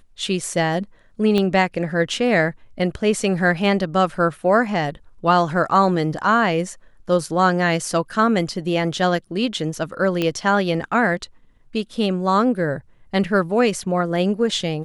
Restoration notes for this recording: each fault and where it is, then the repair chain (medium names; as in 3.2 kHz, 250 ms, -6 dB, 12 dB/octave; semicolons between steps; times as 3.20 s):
1.38 s: pop -9 dBFS
10.22 s: pop -9 dBFS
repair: de-click